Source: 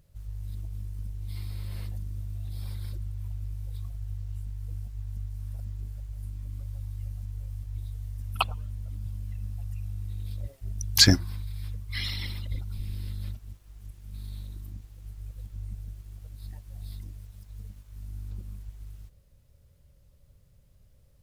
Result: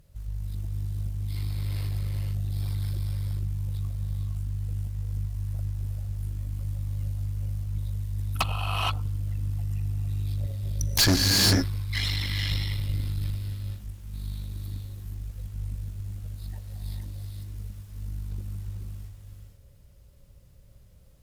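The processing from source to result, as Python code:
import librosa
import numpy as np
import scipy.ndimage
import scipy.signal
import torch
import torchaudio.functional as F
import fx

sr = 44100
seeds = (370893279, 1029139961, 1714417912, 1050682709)

y = fx.rev_gated(x, sr, seeds[0], gate_ms=500, shape='rising', drr_db=1.5)
y = fx.tube_stage(y, sr, drive_db=24.0, bias=0.65)
y = F.gain(torch.from_numpy(y), 7.0).numpy()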